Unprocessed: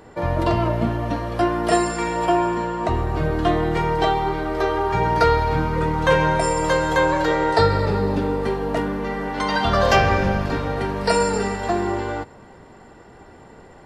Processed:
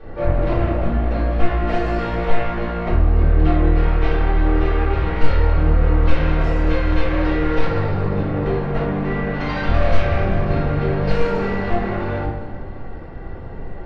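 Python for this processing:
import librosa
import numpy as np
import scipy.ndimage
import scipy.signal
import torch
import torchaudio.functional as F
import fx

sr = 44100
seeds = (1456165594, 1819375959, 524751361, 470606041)

p1 = np.minimum(x, 2.0 * 10.0 ** (-15.5 / 20.0) - x)
p2 = fx.low_shelf(p1, sr, hz=77.0, db=9.5)
p3 = fx.over_compress(p2, sr, threshold_db=-22.0, ratio=-1.0)
p4 = p2 + F.gain(torch.from_numpy(p3), -2.5).numpy()
p5 = 10.0 ** (-18.5 / 20.0) * np.tanh(p4 / 10.0 ** (-18.5 / 20.0))
p6 = fx.air_absorb(p5, sr, metres=270.0)
p7 = p6 + fx.echo_feedback(p6, sr, ms=194, feedback_pct=55, wet_db=-14, dry=0)
p8 = fx.room_shoebox(p7, sr, seeds[0], volume_m3=70.0, walls='mixed', distance_m=3.7)
y = F.gain(torch.from_numpy(p8), -13.0).numpy()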